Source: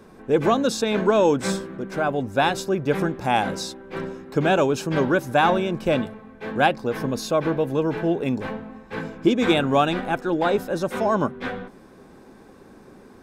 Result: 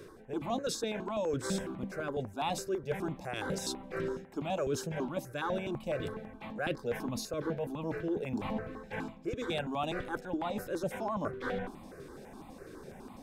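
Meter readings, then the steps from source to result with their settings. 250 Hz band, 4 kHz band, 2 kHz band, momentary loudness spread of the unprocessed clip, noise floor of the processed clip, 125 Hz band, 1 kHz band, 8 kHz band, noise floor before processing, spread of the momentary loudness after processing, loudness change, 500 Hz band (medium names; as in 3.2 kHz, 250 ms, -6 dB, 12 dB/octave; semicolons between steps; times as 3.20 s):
-13.0 dB, -12.0 dB, -14.0 dB, 13 LU, -51 dBFS, -12.0 dB, -15.0 dB, -7.5 dB, -48 dBFS, 10 LU, -13.5 dB, -13.0 dB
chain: reverse; compression 6:1, threshold -32 dBFS, peak gain reduction 18 dB; reverse; stepped phaser 12 Hz 220–1600 Hz; trim +2.5 dB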